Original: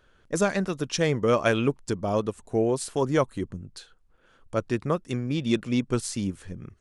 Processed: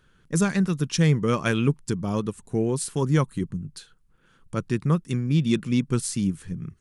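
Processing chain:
graphic EQ with 15 bands 160 Hz +11 dB, 630 Hz −10 dB, 10,000 Hz +6 dB

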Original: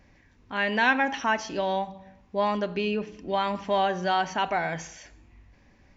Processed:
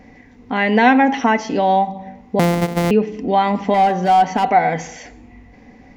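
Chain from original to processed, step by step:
0:02.39–0:02.91: samples sorted by size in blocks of 256 samples
in parallel at −1.5 dB: downward compressor 12 to 1, threshold −35 dBFS, peak gain reduction 19 dB
0:03.74–0:04.47: on the sum: hard clipping −22 dBFS, distortion −16 dB
hollow resonant body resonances 250/460/730/2,000 Hz, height 14 dB, ringing for 35 ms
level +2 dB

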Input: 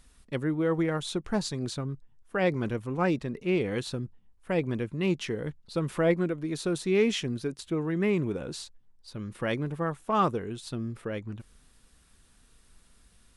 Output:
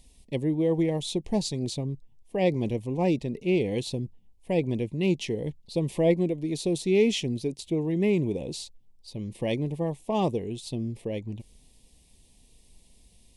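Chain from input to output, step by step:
Butterworth band-reject 1,400 Hz, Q 0.96
level +2.5 dB

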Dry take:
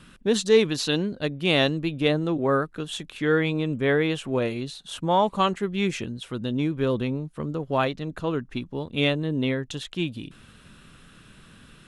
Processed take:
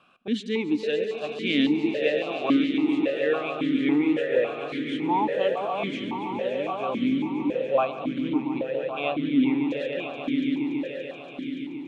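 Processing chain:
on a send: echo that builds up and dies away 143 ms, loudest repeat 5, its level −10 dB
on the sum: formant filter that steps through the vowels 3.6 Hz
level +7.5 dB

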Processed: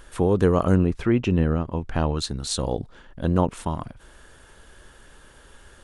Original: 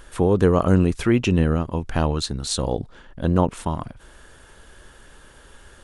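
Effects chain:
0:00.75–0:02.16: low-pass filter 1,600 Hz → 3,600 Hz 6 dB per octave
level −2 dB

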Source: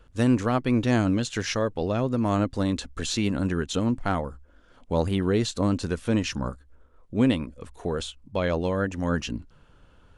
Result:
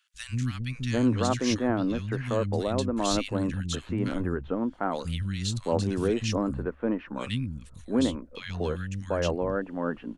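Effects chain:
three-band delay without the direct sound highs, lows, mids 140/750 ms, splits 190/1,800 Hz
level −1 dB

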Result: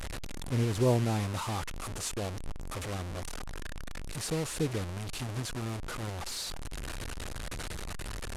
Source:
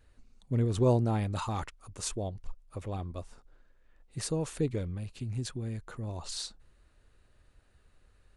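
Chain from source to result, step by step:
linear delta modulator 64 kbit/s, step −30.5 dBFS
level −1 dB

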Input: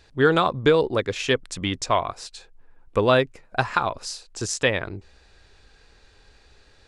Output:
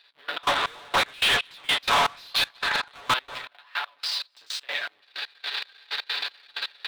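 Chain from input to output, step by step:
sub-harmonics by changed cycles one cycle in 3, muted
camcorder AGC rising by 32 dB per second
flanger 0.78 Hz, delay 9.1 ms, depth 9 ms, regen −37%
comb filter 7 ms, depth 59%
power curve on the samples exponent 0.5
high-pass filter 1,100 Hz 12 dB per octave
high shelf with overshoot 5,100 Hz −10 dB, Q 3
repeating echo 187 ms, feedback 52%, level −23 dB
downward compressor 2 to 1, threshold −34 dBFS, peak gain reduction 12.5 dB
0:00.43–0:03.14: mid-hump overdrive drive 29 dB, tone 3,500 Hz, clips at −12.5 dBFS
convolution reverb RT60 0.45 s, pre-delay 238 ms, DRR 18.5 dB
gate pattern "...x.xx...x..xx" 160 BPM −24 dB

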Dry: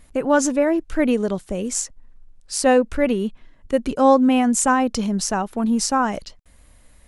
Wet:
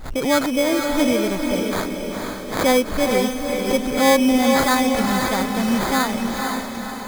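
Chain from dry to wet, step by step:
sample-rate reduction 2,800 Hz, jitter 0%
feedback delay with all-pass diffusion 487 ms, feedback 51%, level −3.5 dB
background raised ahead of every attack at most 88 dB per second
level −1.5 dB

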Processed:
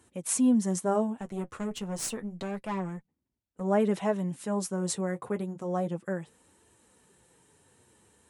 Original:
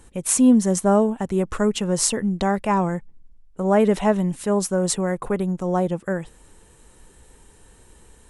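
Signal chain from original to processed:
high-pass filter 88 Hz 24 dB per octave
0:01.20–0:03.61: tube saturation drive 16 dB, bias 0.65
flanger 0.3 Hz, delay 2.8 ms, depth 8.2 ms, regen −40%
level −5 dB

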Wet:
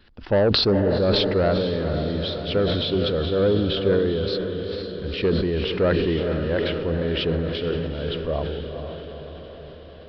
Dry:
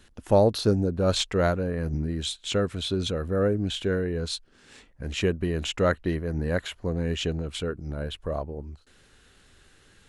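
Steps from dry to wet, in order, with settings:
dynamic equaliser 430 Hz, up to +6 dB, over −35 dBFS, Q 1.1
soft clipping −13 dBFS, distortion −15 dB
on a send: feedback delay with all-pass diffusion 463 ms, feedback 62%, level −7 dB
on the sum: downsampling to 11,025 Hz
level that may fall only so fast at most 25 dB per second

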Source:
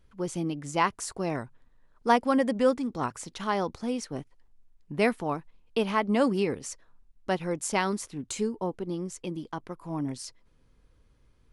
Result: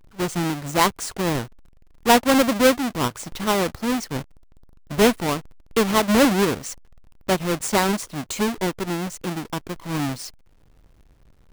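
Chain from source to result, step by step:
each half-wave held at its own peak
level +3 dB

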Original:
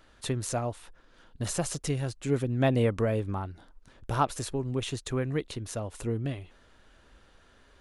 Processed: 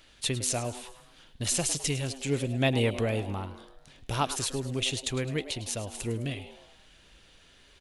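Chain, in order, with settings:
high shelf with overshoot 1,900 Hz +8 dB, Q 1.5
echo with shifted repeats 105 ms, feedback 50%, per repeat +130 Hz, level −14 dB
level −1.5 dB

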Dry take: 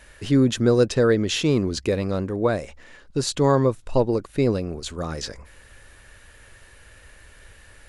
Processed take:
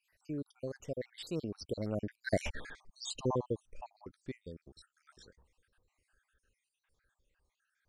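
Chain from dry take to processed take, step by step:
time-frequency cells dropped at random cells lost 66%
source passing by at 0:02.51, 30 m/s, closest 2.1 metres
level +9 dB

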